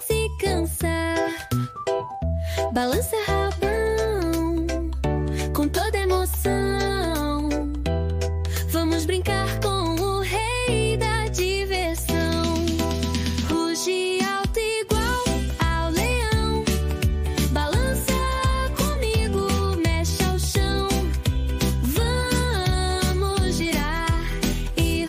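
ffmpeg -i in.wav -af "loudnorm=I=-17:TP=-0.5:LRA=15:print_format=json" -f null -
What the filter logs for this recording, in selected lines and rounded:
"input_i" : "-23.5",
"input_tp" : "-8.8",
"input_lra" : "1.3",
"input_thresh" : "-33.5",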